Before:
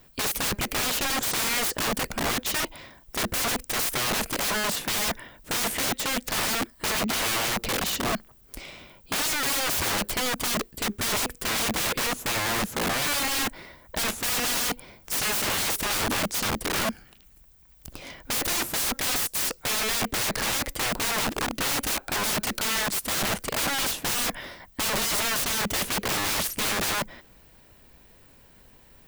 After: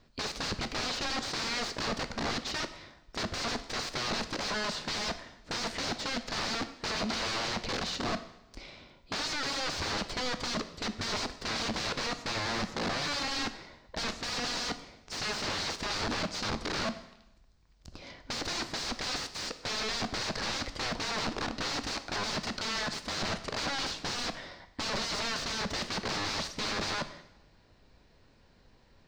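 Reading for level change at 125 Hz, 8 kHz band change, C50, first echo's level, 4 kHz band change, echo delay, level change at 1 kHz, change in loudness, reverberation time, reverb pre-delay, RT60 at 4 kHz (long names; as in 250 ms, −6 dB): −4.5 dB, −12.5 dB, 13.0 dB, no echo audible, −5.0 dB, no echo audible, −5.5 dB, −7.5 dB, 0.90 s, 6 ms, 0.85 s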